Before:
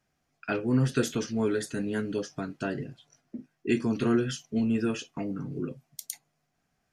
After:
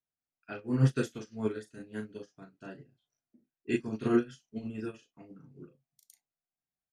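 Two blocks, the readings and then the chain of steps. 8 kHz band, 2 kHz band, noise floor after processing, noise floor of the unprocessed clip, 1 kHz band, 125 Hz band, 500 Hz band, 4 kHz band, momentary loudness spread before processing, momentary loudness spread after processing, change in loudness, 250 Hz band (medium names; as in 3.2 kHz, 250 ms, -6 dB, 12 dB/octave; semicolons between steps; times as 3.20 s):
under -10 dB, -7.0 dB, under -85 dBFS, -78 dBFS, -6.5 dB, -1.5 dB, -5.5 dB, -11.0 dB, 16 LU, 23 LU, -3.0 dB, -6.0 dB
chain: doubling 37 ms -3 dB; upward expansion 2.5:1, over -36 dBFS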